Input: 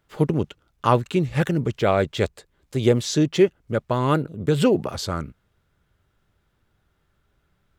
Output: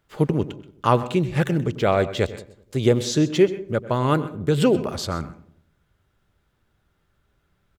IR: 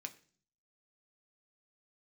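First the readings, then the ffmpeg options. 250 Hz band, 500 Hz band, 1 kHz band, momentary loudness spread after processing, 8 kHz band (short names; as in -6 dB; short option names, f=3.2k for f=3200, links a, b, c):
0.0 dB, +0.5 dB, 0.0 dB, 10 LU, 0.0 dB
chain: -filter_complex "[0:a]asplit=2[a][b];[b]adelay=95,lowpass=f=1k:p=1,volume=-15dB,asplit=2[c][d];[d]adelay=95,lowpass=f=1k:p=1,volume=0.51,asplit=2[e][f];[f]adelay=95,lowpass=f=1k:p=1,volume=0.51,asplit=2[g][h];[h]adelay=95,lowpass=f=1k:p=1,volume=0.51,asplit=2[i][j];[j]adelay=95,lowpass=f=1k:p=1,volume=0.51[k];[a][c][e][g][i][k]amix=inputs=6:normalize=0,asplit=2[l][m];[1:a]atrim=start_sample=2205,adelay=128[n];[m][n]afir=irnorm=-1:irlink=0,volume=-12.5dB[o];[l][o]amix=inputs=2:normalize=0"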